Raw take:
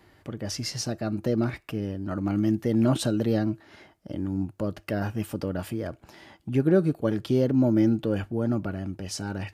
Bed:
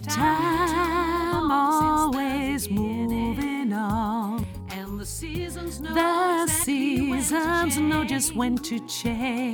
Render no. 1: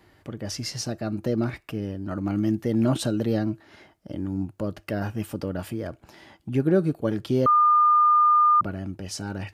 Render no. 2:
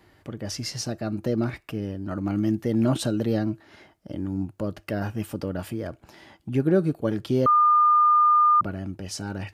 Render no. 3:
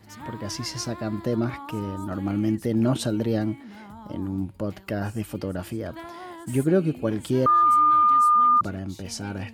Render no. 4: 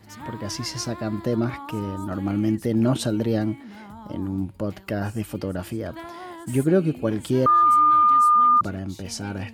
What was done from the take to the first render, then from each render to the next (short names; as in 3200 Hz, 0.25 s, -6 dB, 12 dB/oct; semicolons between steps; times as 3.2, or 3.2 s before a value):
7.46–8.61 bleep 1210 Hz -14.5 dBFS
nothing audible
add bed -18 dB
gain +1.5 dB